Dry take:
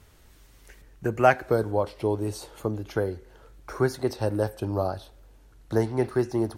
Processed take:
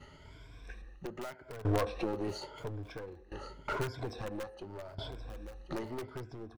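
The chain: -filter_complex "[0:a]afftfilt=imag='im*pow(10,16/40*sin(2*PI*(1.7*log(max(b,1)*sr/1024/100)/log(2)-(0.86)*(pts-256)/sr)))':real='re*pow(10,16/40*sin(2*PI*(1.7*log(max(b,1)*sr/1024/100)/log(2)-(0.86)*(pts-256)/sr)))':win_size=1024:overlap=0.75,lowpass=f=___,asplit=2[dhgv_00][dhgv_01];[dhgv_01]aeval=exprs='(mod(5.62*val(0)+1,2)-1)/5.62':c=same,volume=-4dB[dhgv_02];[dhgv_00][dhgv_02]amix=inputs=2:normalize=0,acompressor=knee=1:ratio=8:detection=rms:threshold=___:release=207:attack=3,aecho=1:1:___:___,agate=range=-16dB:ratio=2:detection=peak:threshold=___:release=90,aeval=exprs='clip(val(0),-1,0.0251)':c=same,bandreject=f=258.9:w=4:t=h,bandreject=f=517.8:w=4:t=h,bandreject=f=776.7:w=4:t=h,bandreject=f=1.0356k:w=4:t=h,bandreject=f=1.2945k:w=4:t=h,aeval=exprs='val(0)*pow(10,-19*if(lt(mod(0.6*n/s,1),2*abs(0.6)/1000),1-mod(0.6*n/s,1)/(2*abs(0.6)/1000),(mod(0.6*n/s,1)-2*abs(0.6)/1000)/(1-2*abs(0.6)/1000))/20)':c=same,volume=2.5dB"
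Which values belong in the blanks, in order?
3.8k, -23dB, 1075, 0.112, -48dB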